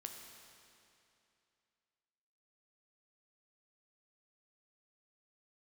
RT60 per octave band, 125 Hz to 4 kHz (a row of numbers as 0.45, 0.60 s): 2.7, 2.7, 2.7, 2.7, 2.6, 2.5 s